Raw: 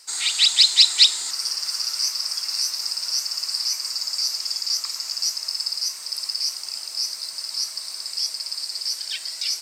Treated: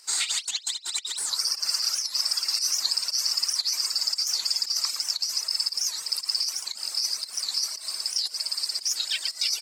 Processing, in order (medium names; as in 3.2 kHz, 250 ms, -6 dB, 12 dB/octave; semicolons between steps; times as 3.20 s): delay 114 ms -6.5 dB; volume shaper 116 bpm, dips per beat 1, -9 dB, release 156 ms; reverb removal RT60 1.1 s; compressor with a negative ratio -26 dBFS, ratio -0.5; warped record 78 rpm, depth 250 cents